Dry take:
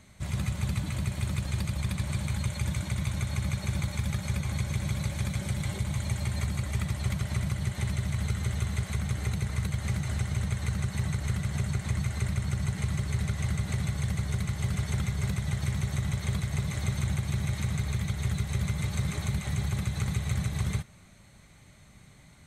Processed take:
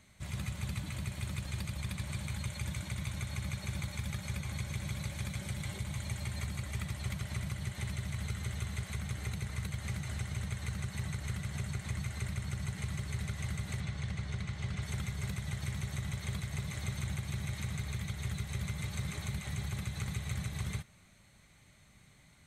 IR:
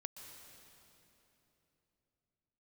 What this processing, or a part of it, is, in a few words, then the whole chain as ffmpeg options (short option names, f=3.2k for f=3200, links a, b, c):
presence and air boost: -filter_complex "[0:a]asettb=1/sr,asplit=3[a][b][c];[a]atrim=end=13.804[d];[b]atrim=start=13.8:end=14.82,asetpts=PTS-STARTPTS,afade=t=in:d=0.004:c=qsin,afade=t=out:st=1.016:d=0.004:c=qsin,lowpass=5.7k[e];[c]atrim=start=14.816[f];[d][e]acrossfade=d=0.004:c1=hsin:c2=qsin[g];[g][f]acrossfade=d=0.004:c1=qsin:c2=hsin,equalizer=f=2.6k:t=o:w=2:g=4,highshelf=f=9.5k:g=5.5,volume=-8dB"